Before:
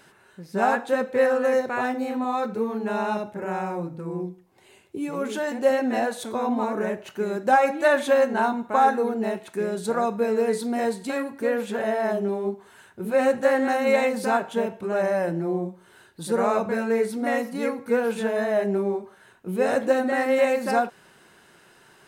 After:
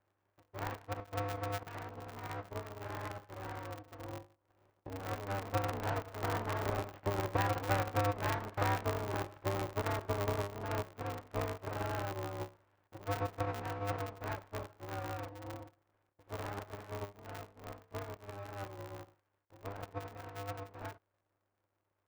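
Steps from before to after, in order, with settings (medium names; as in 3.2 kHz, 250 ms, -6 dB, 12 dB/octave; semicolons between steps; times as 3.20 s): median filter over 25 samples; Doppler pass-by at 7.99 s, 6 m/s, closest 3.5 m; compression 10:1, threshold -35 dBFS, peak gain reduction 19 dB; mistuned SSB +77 Hz 330–2100 Hz; half-wave rectifier; distance through air 89 m; polarity switched at an audio rate 100 Hz; trim +8.5 dB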